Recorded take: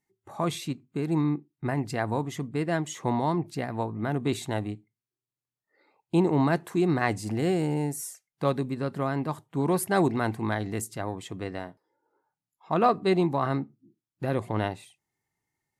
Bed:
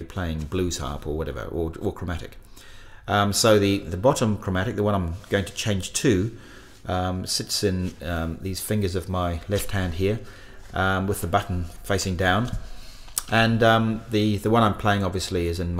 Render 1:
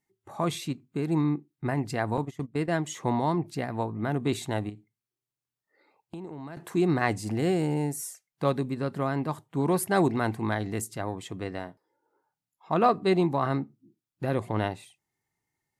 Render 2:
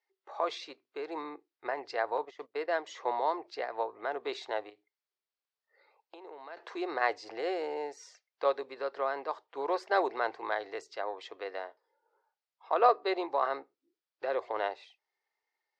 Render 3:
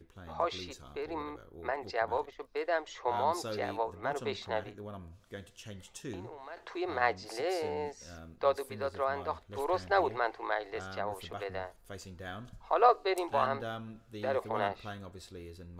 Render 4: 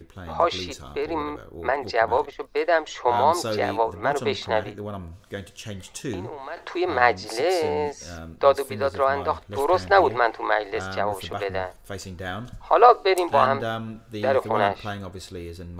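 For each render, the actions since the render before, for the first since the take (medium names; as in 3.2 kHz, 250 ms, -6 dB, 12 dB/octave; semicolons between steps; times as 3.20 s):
2.17–2.77 s: gate -34 dBFS, range -16 dB; 4.69–6.57 s: compression, threshold -37 dBFS
dynamic bell 2.9 kHz, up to -4 dB, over -45 dBFS, Q 0.98; elliptic band-pass 460–5000 Hz, stop band 40 dB
add bed -22 dB
trim +11 dB; peak limiter -2 dBFS, peak gain reduction 2 dB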